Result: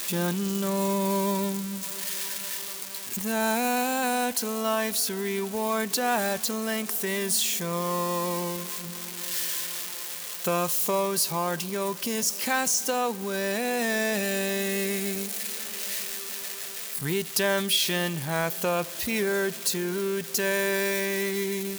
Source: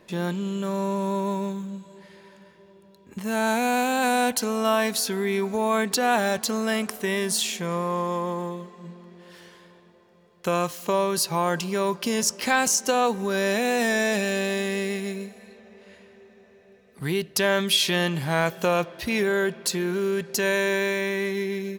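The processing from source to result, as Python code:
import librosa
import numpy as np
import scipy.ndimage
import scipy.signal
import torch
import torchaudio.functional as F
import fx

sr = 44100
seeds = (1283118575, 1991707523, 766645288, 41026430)

y = x + 0.5 * 10.0 ** (-20.5 / 20.0) * np.diff(np.sign(x), prepend=np.sign(x[:1]))
y = fx.rider(y, sr, range_db=4, speed_s=2.0)
y = F.gain(torch.from_numpy(y), -3.0).numpy()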